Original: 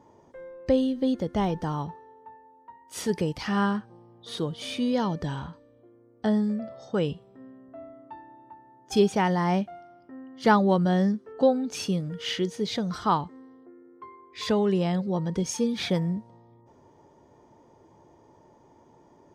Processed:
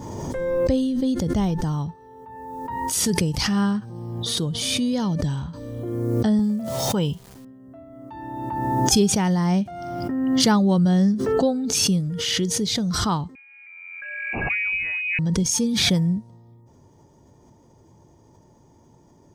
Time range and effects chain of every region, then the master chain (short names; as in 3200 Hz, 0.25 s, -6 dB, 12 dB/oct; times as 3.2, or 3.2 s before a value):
6.39–7.45 HPF 65 Hz + small resonant body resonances 930/3100 Hz, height 13 dB, ringing for 25 ms + sample gate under -51 dBFS
13.35–15.19 air absorption 420 m + inverted band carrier 2700 Hz
whole clip: tone controls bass +12 dB, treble +13 dB; backwards sustainer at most 26 dB/s; gain -3 dB